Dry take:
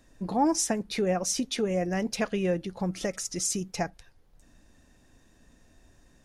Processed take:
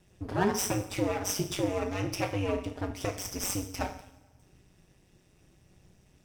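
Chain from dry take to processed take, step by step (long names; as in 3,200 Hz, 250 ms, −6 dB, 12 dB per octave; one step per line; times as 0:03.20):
lower of the sound and its delayed copy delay 0.37 ms
coupled-rooms reverb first 0.55 s, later 1.6 s, from −16 dB, DRR 3 dB
ring modulation 97 Hz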